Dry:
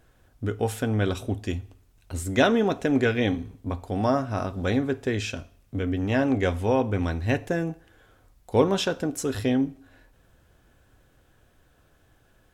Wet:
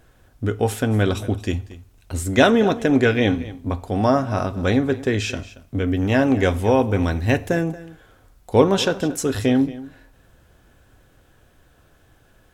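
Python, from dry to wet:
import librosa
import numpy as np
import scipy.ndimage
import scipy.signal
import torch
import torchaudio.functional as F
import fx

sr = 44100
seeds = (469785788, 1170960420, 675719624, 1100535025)

y = fx.high_shelf(x, sr, hz=10000.0, db=8.0, at=(5.88, 7.61))
y = y + 10.0 ** (-17.5 / 20.0) * np.pad(y, (int(229 * sr / 1000.0), 0))[:len(y)]
y = y * 10.0 ** (5.5 / 20.0)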